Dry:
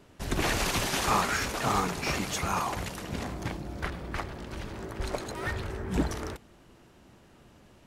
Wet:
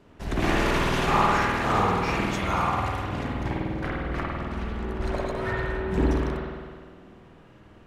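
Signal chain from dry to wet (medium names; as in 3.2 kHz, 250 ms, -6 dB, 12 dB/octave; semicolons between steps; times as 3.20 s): treble shelf 5 kHz -11.5 dB; spring tank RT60 1.7 s, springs 50 ms, chirp 50 ms, DRR -4.5 dB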